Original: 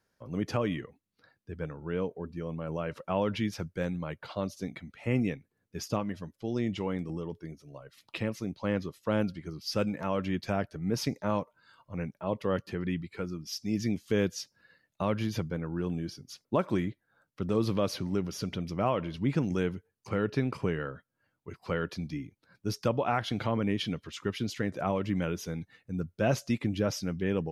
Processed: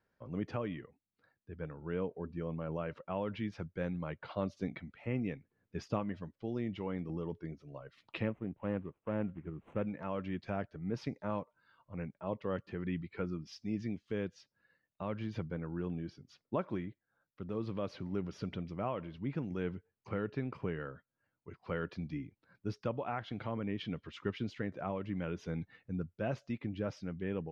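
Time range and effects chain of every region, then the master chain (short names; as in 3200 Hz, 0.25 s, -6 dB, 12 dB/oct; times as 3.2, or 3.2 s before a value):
8.29–9.87 median filter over 25 samples + Butterworth band-stop 4800 Hz, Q 1
whole clip: LPF 2900 Hz 12 dB/oct; vocal rider 0.5 s; gain -6.5 dB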